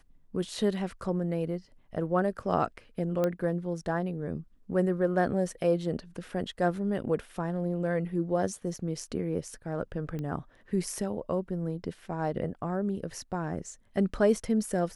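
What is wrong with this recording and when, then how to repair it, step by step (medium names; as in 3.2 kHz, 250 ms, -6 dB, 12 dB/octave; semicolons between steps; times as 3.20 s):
3.24 s: pop -16 dBFS
10.19 s: pop -25 dBFS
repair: de-click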